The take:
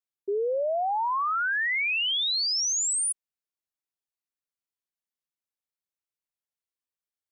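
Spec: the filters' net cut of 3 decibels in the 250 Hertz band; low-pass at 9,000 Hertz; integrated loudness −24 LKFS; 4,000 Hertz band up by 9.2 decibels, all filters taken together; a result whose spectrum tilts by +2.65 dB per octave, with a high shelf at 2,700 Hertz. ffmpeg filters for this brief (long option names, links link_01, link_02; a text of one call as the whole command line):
ffmpeg -i in.wav -af "lowpass=9000,equalizer=frequency=250:width_type=o:gain=-8.5,highshelf=frequency=2700:gain=5,equalizer=frequency=4000:width_type=o:gain=7.5,volume=-5.5dB" out.wav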